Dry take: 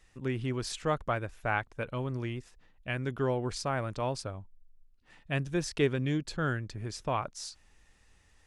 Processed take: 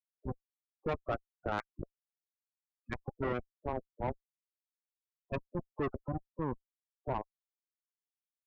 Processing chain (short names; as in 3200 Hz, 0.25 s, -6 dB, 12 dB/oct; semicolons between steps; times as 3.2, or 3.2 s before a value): Schmitt trigger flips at -25.5 dBFS; spectral gate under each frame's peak -20 dB strong; high shelf 5200 Hz -9 dB; notch 1200 Hz, Q 29; spectral gate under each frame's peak -25 dB strong; tilt +4 dB/oct; soft clip -38 dBFS, distortion -15 dB; gain +12.5 dB